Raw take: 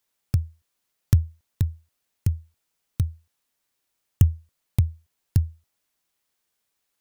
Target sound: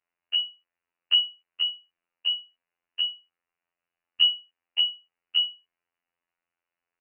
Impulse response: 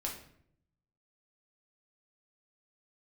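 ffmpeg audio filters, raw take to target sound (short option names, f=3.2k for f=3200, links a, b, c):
-af "lowpass=f=2.6k:t=q:w=0.5098,lowpass=f=2.6k:t=q:w=0.6013,lowpass=f=2.6k:t=q:w=0.9,lowpass=f=2.6k:t=q:w=2.563,afreqshift=-3000,afftfilt=real='hypot(re,im)*cos(PI*b)':imag='0':win_size=2048:overlap=0.75"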